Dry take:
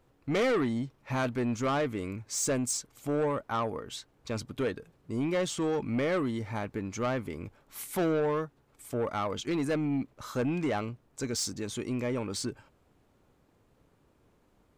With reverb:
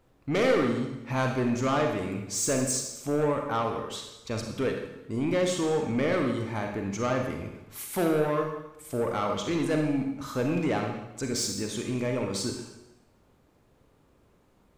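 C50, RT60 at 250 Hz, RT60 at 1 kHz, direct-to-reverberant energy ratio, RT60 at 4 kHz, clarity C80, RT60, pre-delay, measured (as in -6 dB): 4.0 dB, 0.95 s, 0.90 s, 2.5 dB, 0.90 s, 7.0 dB, 0.90 s, 34 ms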